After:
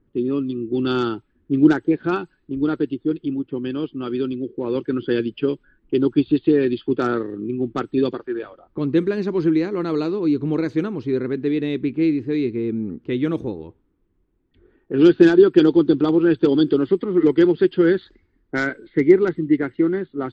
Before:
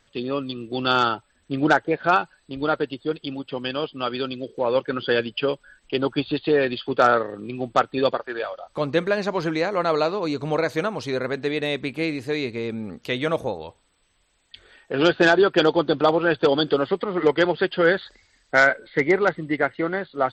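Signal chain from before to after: low-pass opened by the level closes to 970 Hz, open at -15.5 dBFS; resonant low shelf 460 Hz +9.5 dB, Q 3; gain -6.5 dB

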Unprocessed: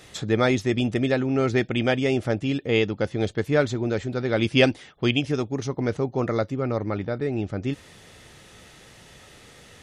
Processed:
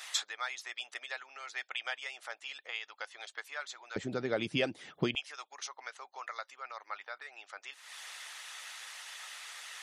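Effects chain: compressor 5:1, threshold -37 dBFS, peak gain reduction 21 dB; HPF 890 Hz 24 dB/oct, from 3.96 s 120 Hz, from 5.15 s 930 Hz; harmonic-percussive split harmonic -9 dB; gain +8.5 dB

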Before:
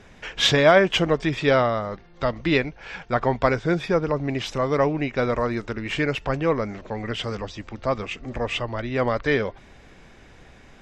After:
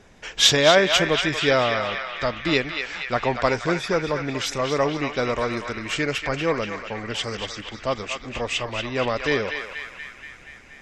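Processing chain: tone controls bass -3 dB, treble +12 dB; on a send: narrowing echo 0.238 s, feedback 75%, band-pass 2100 Hz, level -4 dB; on the sum: mismatched tape noise reduction decoder only; gain -1 dB

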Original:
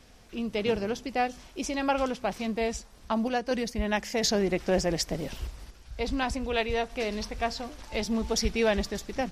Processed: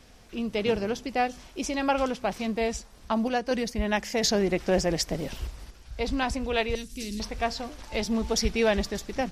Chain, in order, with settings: 6.75–7.2 EQ curve 310 Hz 0 dB, 700 Hz -30 dB, 7900 Hz +10 dB; gain +1.5 dB

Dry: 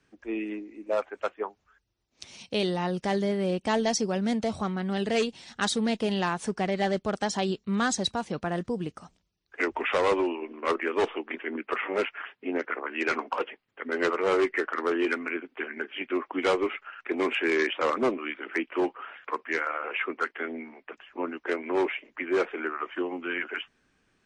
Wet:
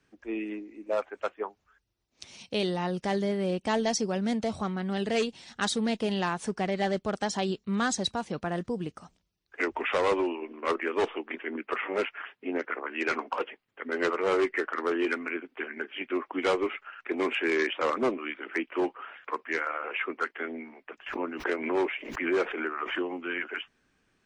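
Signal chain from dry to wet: 21.06–23.18 backwards sustainer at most 61 dB/s; gain -1.5 dB

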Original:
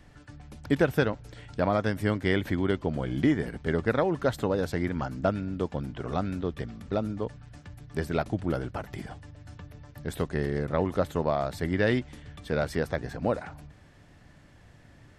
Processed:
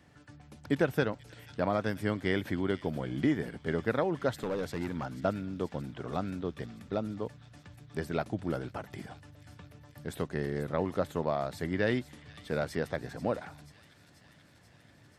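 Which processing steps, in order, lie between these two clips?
HPF 98 Hz 12 dB/oct; 4.42–5.23 overloaded stage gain 24 dB; on a send: thin delay 0.486 s, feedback 73%, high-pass 3300 Hz, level -11.5 dB; on the sum: gain -4 dB

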